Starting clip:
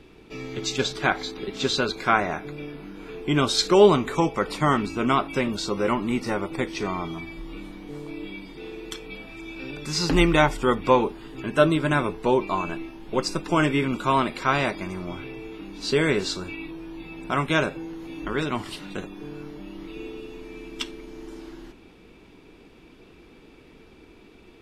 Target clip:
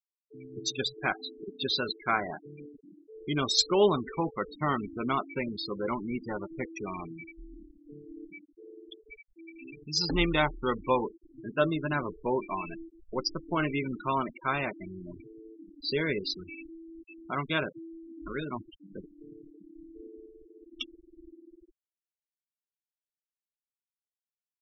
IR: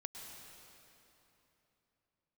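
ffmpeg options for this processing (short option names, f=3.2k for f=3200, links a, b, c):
-af "afftfilt=real='re*gte(hypot(re,im),0.0794)':imag='im*gte(hypot(re,im),0.0794)':win_size=1024:overlap=0.75,aemphasis=mode=production:type=75fm,volume=-7.5dB"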